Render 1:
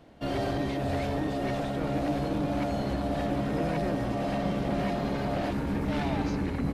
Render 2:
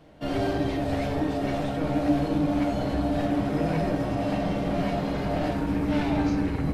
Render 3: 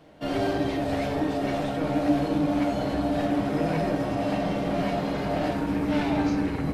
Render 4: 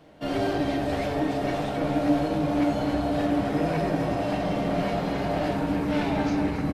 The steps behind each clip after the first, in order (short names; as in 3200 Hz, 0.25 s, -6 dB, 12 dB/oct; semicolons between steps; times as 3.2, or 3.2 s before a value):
reverb RT60 0.85 s, pre-delay 6 ms, DRR 2.5 dB
low shelf 110 Hz -9 dB; gain +1.5 dB
outdoor echo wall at 47 m, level -7 dB